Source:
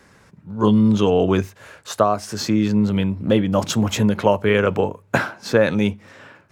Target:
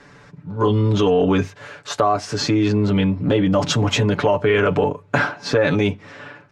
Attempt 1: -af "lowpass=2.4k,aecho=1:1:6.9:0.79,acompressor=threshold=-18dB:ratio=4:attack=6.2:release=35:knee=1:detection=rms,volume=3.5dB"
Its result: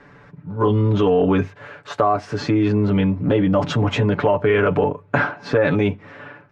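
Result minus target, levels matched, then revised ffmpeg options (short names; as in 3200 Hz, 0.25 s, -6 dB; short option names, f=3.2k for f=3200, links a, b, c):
4000 Hz band -6.5 dB
-af "lowpass=5.4k,aecho=1:1:6.9:0.79,acompressor=threshold=-18dB:ratio=4:attack=6.2:release=35:knee=1:detection=rms,volume=3.5dB"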